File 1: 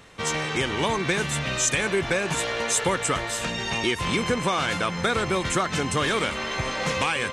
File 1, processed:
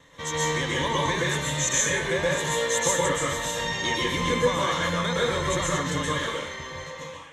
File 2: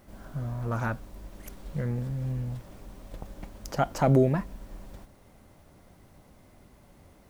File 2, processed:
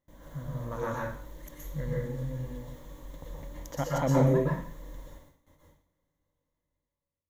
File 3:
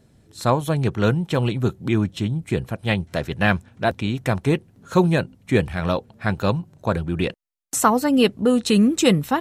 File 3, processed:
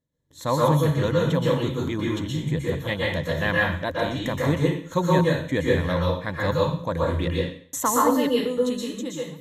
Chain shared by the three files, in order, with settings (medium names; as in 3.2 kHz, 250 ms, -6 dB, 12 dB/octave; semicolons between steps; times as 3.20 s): fade out at the end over 1.82 s; gate with hold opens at -44 dBFS; rippled EQ curve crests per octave 1.1, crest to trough 10 dB; plate-style reverb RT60 0.51 s, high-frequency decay 1×, pre-delay 110 ms, DRR -4 dB; trim -7 dB